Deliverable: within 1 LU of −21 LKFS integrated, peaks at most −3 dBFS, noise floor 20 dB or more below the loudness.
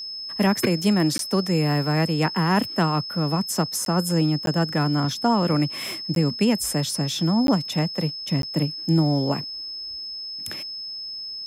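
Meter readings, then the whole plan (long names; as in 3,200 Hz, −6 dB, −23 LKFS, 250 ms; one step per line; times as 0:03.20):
number of dropouts 6; longest dropout 12 ms; interfering tone 5,200 Hz; level of the tone −31 dBFS; integrated loudness −23.0 LKFS; sample peak −8.5 dBFS; target loudness −21.0 LKFS
→ repair the gap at 0:01.18/0:03.85/0:04.46/0:06.15/0:07.47/0:08.42, 12 ms
notch filter 5,200 Hz, Q 30
level +2 dB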